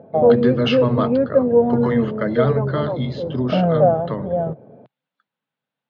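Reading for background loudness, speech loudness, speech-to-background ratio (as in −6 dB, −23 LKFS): −19.5 LKFS, −23.5 LKFS, −4.0 dB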